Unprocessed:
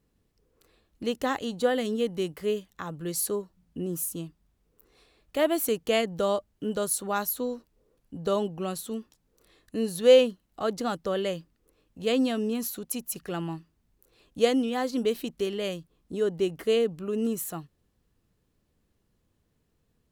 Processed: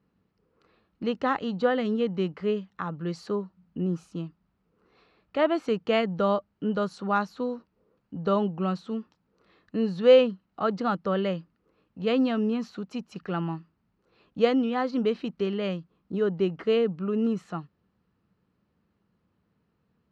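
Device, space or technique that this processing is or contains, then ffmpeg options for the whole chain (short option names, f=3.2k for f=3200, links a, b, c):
guitar cabinet: -af "highpass=82,equalizer=f=190:t=q:w=4:g=8,equalizer=f=910:t=q:w=4:g=4,equalizer=f=1.3k:t=q:w=4:g=7,equalizer=f=3.5k:t=q:w=4:g=-6,lowpass=f=4.3k:w=0.5412,lowpass=f=4.3k:w=1.3066"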